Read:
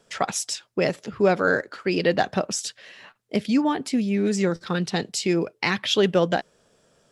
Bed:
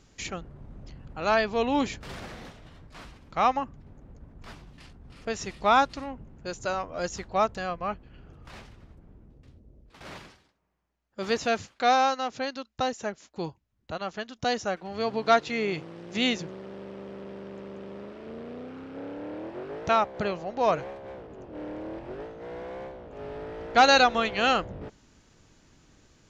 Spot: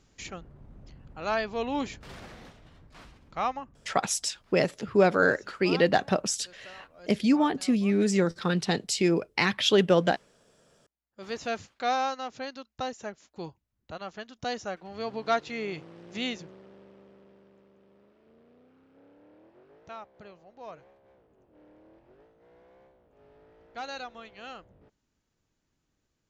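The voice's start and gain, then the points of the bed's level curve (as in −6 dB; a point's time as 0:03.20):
3.75 s, −1.5 dB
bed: 0:03.39 −5 dB
0:04.18 −19.5 dB
0:10.71 −19.5 dB
0:11.49 −5.5 dB
0:16.11 −5.5 dB
0:17.73 −20 dB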